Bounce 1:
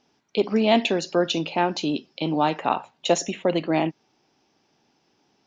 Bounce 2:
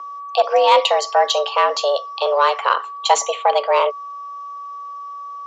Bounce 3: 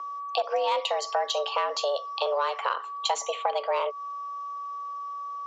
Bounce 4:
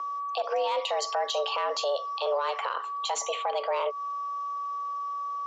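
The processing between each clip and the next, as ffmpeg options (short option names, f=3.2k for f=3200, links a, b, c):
-af "aeval=exprs='val(0)+0.0158*sin(2*PI*860*n/s)':c=same,acontrast=71,afreqshift=280"
-af "acompressor=threshold=-21dB:ratio=4,volume=-3.5dB"
-af "alimiter=limit=-22.5dB:level=0:latency=1:release=43,volume=2.5dB"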